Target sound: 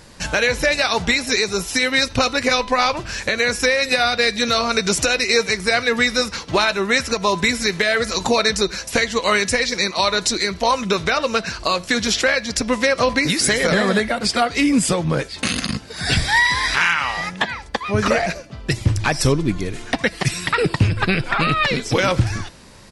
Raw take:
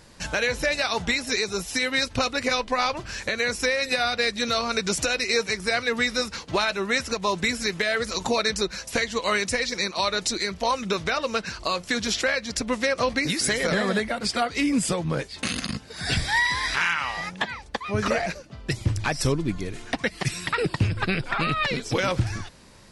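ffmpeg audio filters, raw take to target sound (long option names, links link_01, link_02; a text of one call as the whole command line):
ffmpeg -i in.wav -filter_complex "[0:a]bandreject=frequency=335.1:width_type=h:width=4,bandreject=frequency=670.2:width_type=h:width=4,bandreject=frequency=1005.3:width_type=h:width=4,bandreject=frequency=1340.4:width_type=h:width=4,bandreject=frequency=1675.5:width_type=h:width=4,bandreject=frequency=2010.6:width_type=h:width=4,bandreject=frequency=2345.7:width_type=h:width=4,bandreject=frequency=2680.8:width_type=h:width=4,bandreject=frequency=3015.9:width_type=h:width=4,bandreject=frequency=3351:width_type=h:width=4,bandreject=frequency=3686.1:width_type=h:width=4,bandreject=frequency=4021.2:width_type=h:width=4,bandreject=frequency=4356.3:width_type=h:width=4,bandreject=frequency=4691.4:width_type=h:width=4,bandreject=frequency=5026.5:width_type=h:width=4,bandreject=frequency=5361.6:width_type=h:width=4,bandreject=frequency=5696.7:width_type=h:width=4,bandreject=frequency=6031.8:width_type=h:width=4,bandreject=frequency=6366.9:width_type=h:width=4,asplit=2[link_01][link_02];[link_02]adelay=80,highpass=300,lowpass=3400,asoftclip=type=hard:threshold=-21dB,volume=-24dB[link_03];[link_01][link_03]amix=inputs=2:normalize=0,volume=6.5dB" out.wav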